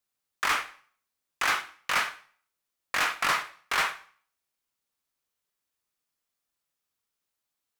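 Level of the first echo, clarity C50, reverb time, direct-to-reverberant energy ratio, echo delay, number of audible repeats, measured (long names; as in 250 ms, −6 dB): no echo audible, 13.5 dB, 0.45 s, 8.0 dB, no echo audible, no echo audible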